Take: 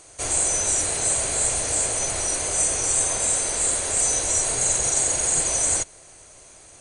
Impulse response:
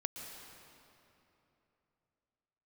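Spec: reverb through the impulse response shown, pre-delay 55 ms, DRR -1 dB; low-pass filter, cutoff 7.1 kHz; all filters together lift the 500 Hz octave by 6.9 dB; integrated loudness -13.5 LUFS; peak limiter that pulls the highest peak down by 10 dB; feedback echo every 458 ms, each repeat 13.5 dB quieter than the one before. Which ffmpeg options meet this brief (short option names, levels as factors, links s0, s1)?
-filter_complex "[0:a]lowpass=7100,equalizer=f=500:t=o:g=8.5,alimiter=limit=0.106:level=0:latency=1,aecho=1:1:458|916:0.211|0.0444,asplit=2[s0][s1];[1:a]atrim=start_sample=2205,adelay=55[s2];[s1][s2]afir=irnorm=-1:irlink=0,volume=1.12[s3];[s0][s3]amix=inputs=2:normalize=0,volume=3.35"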